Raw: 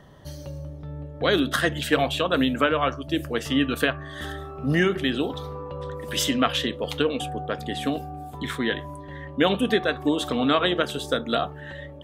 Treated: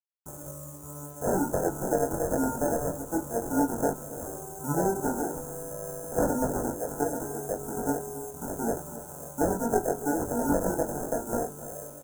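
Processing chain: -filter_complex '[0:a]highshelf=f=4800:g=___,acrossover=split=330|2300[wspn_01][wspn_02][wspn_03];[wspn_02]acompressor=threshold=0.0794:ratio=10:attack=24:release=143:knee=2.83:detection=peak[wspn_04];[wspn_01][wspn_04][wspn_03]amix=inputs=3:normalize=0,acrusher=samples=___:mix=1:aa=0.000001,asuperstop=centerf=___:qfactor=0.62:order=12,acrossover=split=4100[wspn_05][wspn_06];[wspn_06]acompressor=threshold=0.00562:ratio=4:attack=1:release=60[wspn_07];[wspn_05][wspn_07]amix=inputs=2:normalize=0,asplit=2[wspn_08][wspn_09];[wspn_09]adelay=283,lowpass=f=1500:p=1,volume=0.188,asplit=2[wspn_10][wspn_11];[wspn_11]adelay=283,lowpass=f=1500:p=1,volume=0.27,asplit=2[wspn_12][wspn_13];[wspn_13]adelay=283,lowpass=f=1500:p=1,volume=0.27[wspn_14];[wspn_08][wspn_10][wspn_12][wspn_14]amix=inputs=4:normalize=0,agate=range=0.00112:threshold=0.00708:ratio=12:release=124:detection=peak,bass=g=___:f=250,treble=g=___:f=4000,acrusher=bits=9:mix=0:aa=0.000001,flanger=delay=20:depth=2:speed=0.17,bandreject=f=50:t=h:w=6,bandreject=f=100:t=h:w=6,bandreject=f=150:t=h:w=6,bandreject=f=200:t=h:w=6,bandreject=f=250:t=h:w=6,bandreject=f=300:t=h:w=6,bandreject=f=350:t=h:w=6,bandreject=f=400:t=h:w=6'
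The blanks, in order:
10.5, 38, 3100, -4, 15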